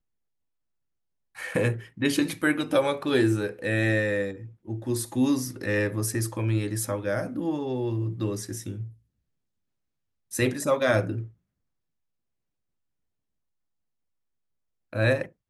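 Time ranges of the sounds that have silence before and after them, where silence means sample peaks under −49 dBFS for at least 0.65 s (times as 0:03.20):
0:01.35–0:08.94
0:10.31–0:11.31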